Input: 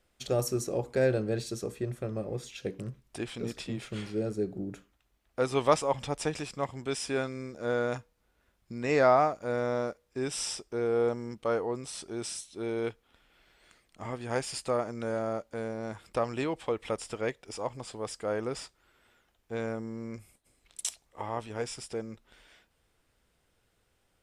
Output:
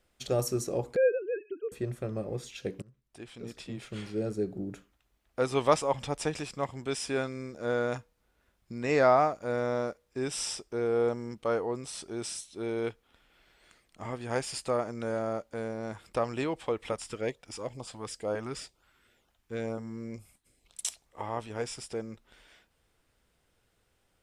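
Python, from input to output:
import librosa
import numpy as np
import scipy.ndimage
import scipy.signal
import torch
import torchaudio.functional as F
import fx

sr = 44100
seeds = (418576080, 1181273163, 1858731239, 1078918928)

y = fx.sine_speech(x, sr, at=(0.96, 1.72))
y = fx.filter_lfo_notch(y, sr, shape='saw_up', hz=2.1, low_hz=290.0, high_hz=2200.0, q=1.4, at=(16.92, 20.83))
y = fx.edit(y, sr, fx.fade_in_from(start_s=2.82, length_s=1.48, floor_db=-22.5), tone=tone)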